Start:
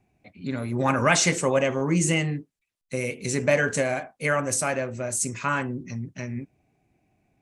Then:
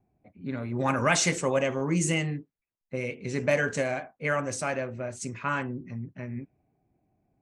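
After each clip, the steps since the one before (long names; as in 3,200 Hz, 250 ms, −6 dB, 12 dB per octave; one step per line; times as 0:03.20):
low-pass that shuts in the quiet parts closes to 1,100 Hz, open at −17.5 dBFS
level −3.5 dB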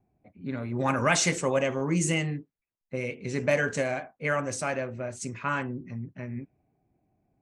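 no processing that can be heard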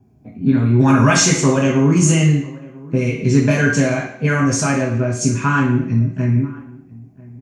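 in parallel at +2.5 dB: downward compressor, threshold −33 dBFS, peak gain reduction 14.5 dB
on the sum: slap from a distant wall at 170 metres, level −22 dB
convolution reverb RT60 0.70 s, pre-delay 3 ms, DRR −1 dB
level −4 dB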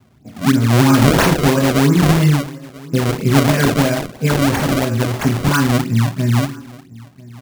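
sample-and-hold swept by an LFO 29×, swing 160% 3 Hz
level +1 dB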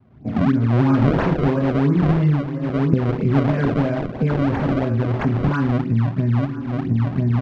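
camcorder AGC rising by 54 dB per second
head-to-tape spacing loss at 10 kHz 41 dB
level −3.5 dB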